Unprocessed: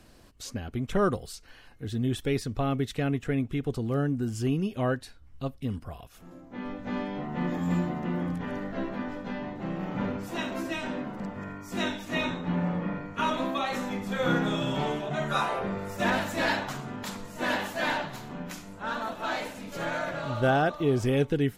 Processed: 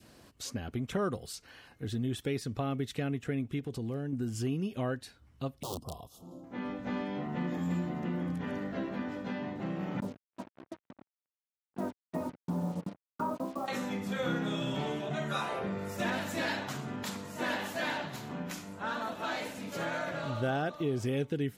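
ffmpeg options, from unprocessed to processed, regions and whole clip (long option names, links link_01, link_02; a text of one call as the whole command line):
ffmpeg -i in.wav -filter_complex "[0:a]asettb=1/sr,asplit=3[link_01][link_02][link_03];[link_01]atrim=end=3.594[link_04];[link_02]atrim=start=3.59:end=4.13,asetpts=PTS-STARTPTS,afade=type=in:duration=0.004:curve=qsin,afade=type=out:start_time=0.536:duration=0.004:curve=qsin,equalizer=frequency=1300:width_type=o:width=0.24:gain=-9.5,acompressor=threshold=-31dB:ratio=3:attack=3.2:release=140:knee=1:detection=peak,volume=26dB,asoftclip=hard,volume=-26dB[link_05];[link_03]atrim=start=4.126[link_06];[link_04][link_05]acrossfade=duration=0.004:curve1=hsin:curve2=qsin[link_07];[link_07][link_06]acrossfade=duration=0.004:curve1=qsin:curve2=hsin,asettb=1/sr,asplit=3[link_08][link_09][link_10];[link_08]atrim=end=5.634[link_11];[link_09]atrim=start=5.63:end=6.44,asetpts=PTS-STARTPTS,afade=type=in:duration=0.004:curve=qsin,afade=type=out:start_time=0.806:duration=0.004:curve=qsin,aeval=exprs='(mod(29.9*val(0)+1,2)-1)/29.9':channel_layout=same,asuperstop=centerf=1900:order=8:qfactor=0.91[link_12];[link_10]atrim=start=6.436[link_13];[link_11][link_12]acrossfade=duration=0.004:curve1=hsin:curve2=qsin[link_14];[link_14][link_13]acrossfade=duration=0.004:curve1=qsin:curve2=hsin,asettb=1/sr,asplit=3[link_15][link_16][link_17];[link_15]atrim=end=10.004[link_18];[link_16]atrim=start=10:end=13.68,asetpts=PTS-STARTPTS,afade=type=in:duration=0.004:curve=qsin,afade=type=out:start_time=3.676:duration=0.004:curve=qsin,agate=range=-27dB:threshold=-30dB:ratio=16:release=100:detection=peak,lowpass=frequency=1100:width=0.5412,lowpass=frequency=1100:width=1.3066,acrusher=bits=7:mix=0:aa=0.5[link_19];[link_17]atrim=start=13.676[link_20];[link_18][link_19]acrossfade=duration=0.004:curve1=hsin:curve2=qsin[link_21];[link_21][link_20]acrossfade=duration=0.004:curve1=qsin:curve2=hsin,highpass=82,adynamicequalizer=threshold=0.00708:dfrequency=970:dqfactor=0.87:tfrequency=970:tqfactor=0.87:attack=5:release=100:ratio=0.375:range=2:mode=cutabove:tftype=bell,acompressor=threshold=-33dB:ratio=2" out.wav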